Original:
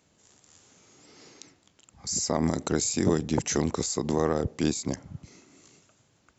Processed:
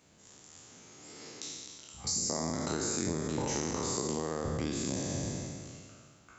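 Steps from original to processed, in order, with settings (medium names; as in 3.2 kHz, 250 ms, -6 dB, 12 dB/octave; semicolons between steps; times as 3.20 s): spectral sustain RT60 1.93 s; compression 8:1, threshold -30 dBFS, peak gain reduction 15.5 dB; on a send: flutter echo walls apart 9.7 m, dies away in 0.28 s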